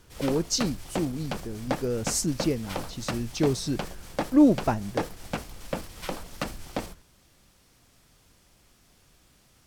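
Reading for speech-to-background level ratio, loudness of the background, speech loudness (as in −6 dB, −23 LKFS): 8.5 dB, −36.0 LKFS, −27.5 LKFS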